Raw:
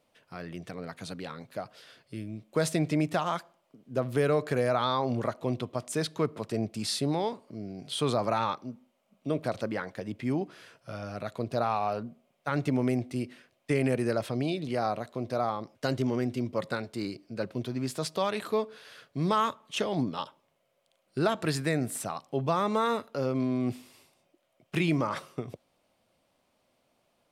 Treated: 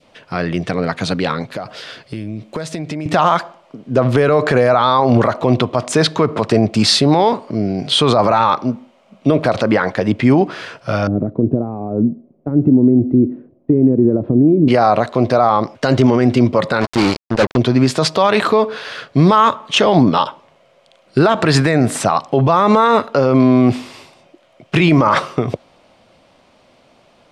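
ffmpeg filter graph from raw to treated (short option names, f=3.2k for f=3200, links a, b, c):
-filter_complex "[0:a]asettb=1/sr,asplit=3[a][b][c];[a]atrim=end=1.524[d];[b]atrim=start=1.52:end=3.06,asetpts=PTS-STARTPTS,afade=t=in:d=0.004:c=qsin,afade=t=out:st=1.536:d=0.004:c=qsin,highshelf=f=8.1k:g=4,acompressor=threshold=-41dB:ratio=10:attack=3.2:release=140:knee=1:detection=peak[e];[c]atrim=start=3.056[f];[d][e]acrossfade=d=0.004:c1=hsin:c2=qsin[g];[g][f]acrossfade=d=0.004:c1=qsin:c2=hsin,asettb=1/sr,asplit=3[h][i][j];[h]atrim=end=11.074[k];[i]atrim=start=11.07:end=14.68,asetpts=PTS-STARTPTS,afade=t=in:d=0.004:c=qsin,afade=t=out:st=3.606:d=0.004:c=qsin,acompressor=threshold=-31dB:ratio=10:attack=3.2:release=140:knee=1:detection=peak,lowpass=f=310:t=q:w=2.4[l];[j]atrim=start=14.676[m];[k][l]acrossfade=d=0.004:c1=hsin:c2=qsin[n];[n][m]acrossfade=d=0.004:c1=qsin:c2=hsin,asettb=1/sr,asplit=3[o][p][q];[o]atrim=end=16.814[r];[p]atrim=start=16.81:end=17.57,asetpts=PTS-STARTPTS,afade=t=in:d=0.004:c=qsin,afade=t=out:st=0.756:d=0.004:c=qsin,highshelf=f=9k:g=5.5,asoftclip=type=hard:threshold=-31dB,acrusher=bits=5:mix=0:aa=0.5[s];[q]atrim=start=17.566[t];[r][s]acrossfade=d=0.004:c1=hsin:c2=qsin[u];[u][t]acrossfade=d=0.004:c1=qsin:c2=hsin,lowpass=5.7k,adynamicequalizer=threshold=0.01:dfrequency=960:dqfactor=0.84:tfrequency=960:tqfactor=0.84:attack=5:release=100:ratio=0.375:range=2.5:mode=boostabove:tftype=bell,alimiter=level_in=22.5dB:limit=-1dB:release=50:level=0:latency=1,volume=-2dB"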